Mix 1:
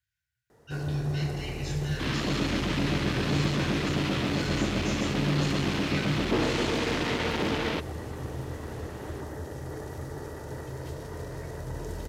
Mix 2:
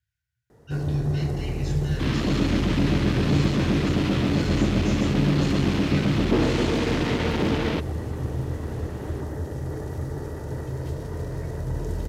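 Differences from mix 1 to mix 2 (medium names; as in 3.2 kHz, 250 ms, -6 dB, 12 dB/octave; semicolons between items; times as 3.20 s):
speech: send -7.0 dB; master: add bass shelf 400 Hz +9 dB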